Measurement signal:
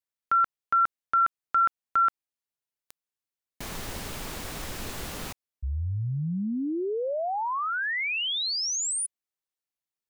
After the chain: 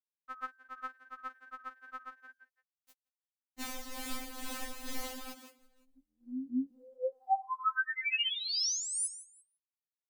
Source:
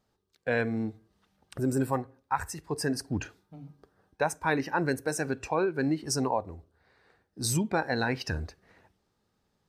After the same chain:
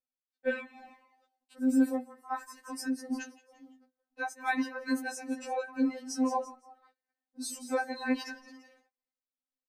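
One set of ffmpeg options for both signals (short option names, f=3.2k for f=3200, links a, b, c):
-filter_complex "[0:a]asplit=2[a][b];[b]asplit=3[c][d][e];[c]adelay=170,afreqshift=110,volume=-15dB[f];[d]adelay=340,afreqshift=220,volume=-23.4dB[g];[e]adelay=510,afreqshift=330,volume=-31.8dB[h];[f][g][h]amix=inputs=3:normalize=0[i];[a][i]amix=inputs=2:normalize=0,agate=range=-22dB:threshold=-55dB:ratio=3:release=63:detection=rms,tremolo=f=2.2:d=0.6,afftfilt=real='re*3.46*eq(mod(b,12),0)':imag='im*3.46*eq(mod(b,12),0)':win_size=2048:overlap=0.75"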